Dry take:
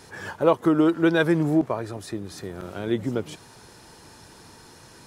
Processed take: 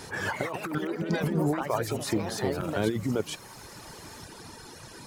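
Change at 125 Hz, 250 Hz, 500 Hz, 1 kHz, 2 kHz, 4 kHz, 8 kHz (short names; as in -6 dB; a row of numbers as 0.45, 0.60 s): -1.5, -7.5, -6.0, -3.0, -3.0, 0.0, +5.5 dB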